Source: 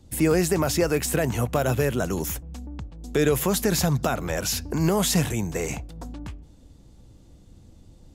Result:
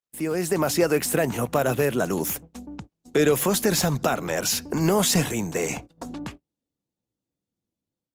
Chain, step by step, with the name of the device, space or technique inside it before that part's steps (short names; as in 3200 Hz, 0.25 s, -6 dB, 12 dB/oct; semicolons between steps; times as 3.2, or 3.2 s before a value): video call (HPF 170 Hz 12 dB/oct; AGC gain up to 14 dB; gate -31 dBFS, range -37 dB; gain -7 dB; Opus 24 kbps 48000 Hz)